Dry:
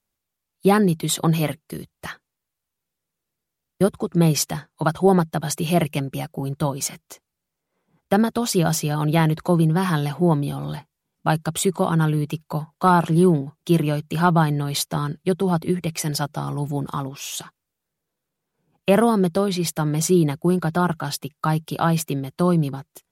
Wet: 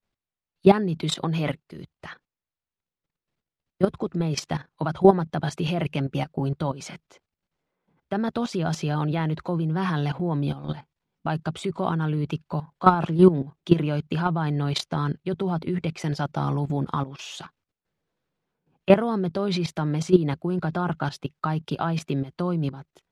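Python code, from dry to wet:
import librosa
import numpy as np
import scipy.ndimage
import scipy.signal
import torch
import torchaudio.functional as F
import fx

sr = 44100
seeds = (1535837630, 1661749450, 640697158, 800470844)

y = scipy.signal.sosfilt(scipy.signal.butter(2, 4100.0, 'lowpass', fs=sr, output='sos'), x)
y = fx.level_steps(y, sr, step_db=14)
y = F.gain(torch.from_numpy(y), 3.5).numpy()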